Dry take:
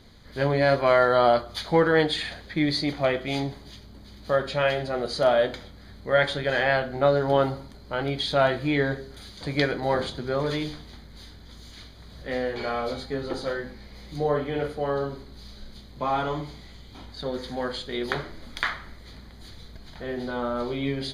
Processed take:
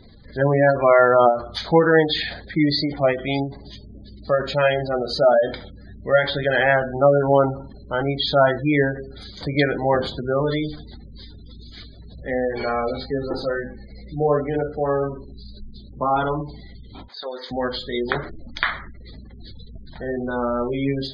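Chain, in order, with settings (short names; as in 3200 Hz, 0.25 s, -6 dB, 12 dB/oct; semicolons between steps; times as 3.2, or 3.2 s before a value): 17.08–17.51 HPF 610 Hz 12 dB/oct; spectral gate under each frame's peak -20 dB strong; ending taper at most 140 dB/s; gain +5.5 dB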